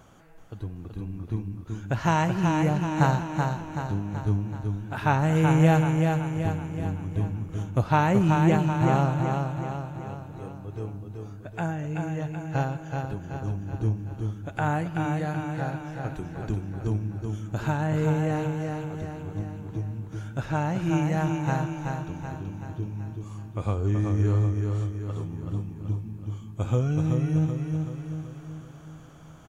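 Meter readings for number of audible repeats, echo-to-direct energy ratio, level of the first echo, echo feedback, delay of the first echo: 6, -3.0 dB, -4.5 dB, 53%, 0.379 s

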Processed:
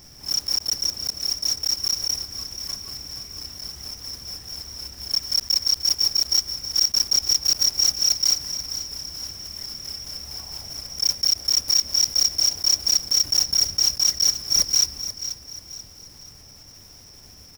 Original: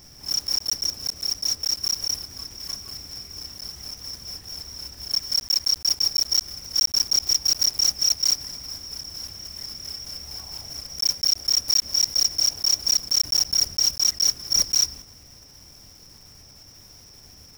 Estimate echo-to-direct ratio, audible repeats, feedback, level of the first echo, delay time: -11.0 dB, 3, 39%, -11.5 dB, 0.485 s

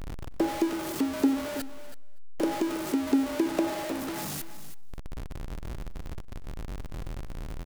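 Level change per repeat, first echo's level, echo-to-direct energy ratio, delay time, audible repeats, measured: no steady repeat, -21.5 dB, -12.5 dB, 0.242 s, 3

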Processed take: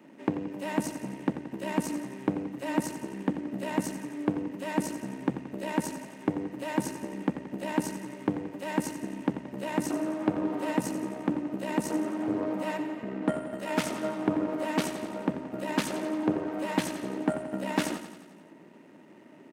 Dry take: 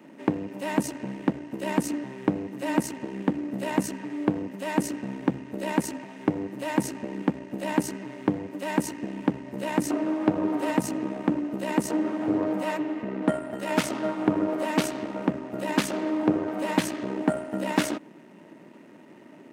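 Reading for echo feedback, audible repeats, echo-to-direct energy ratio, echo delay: 59%, 6, -9.0 dB, 88 ms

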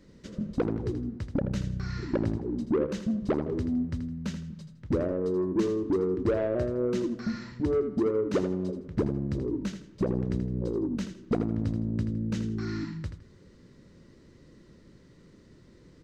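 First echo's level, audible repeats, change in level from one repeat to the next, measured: -9.5 dB, 2, -11.0 dB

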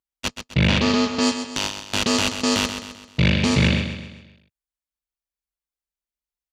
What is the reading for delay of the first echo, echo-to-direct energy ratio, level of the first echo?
0.13 s, -8.0 dB, -9.0 dB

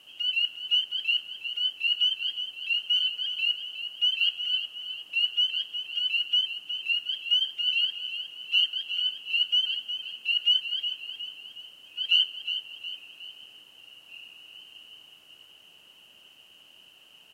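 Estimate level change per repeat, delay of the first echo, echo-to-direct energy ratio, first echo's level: -6.5 dB, 0.363 s, -8.5 dB, -9.5 dB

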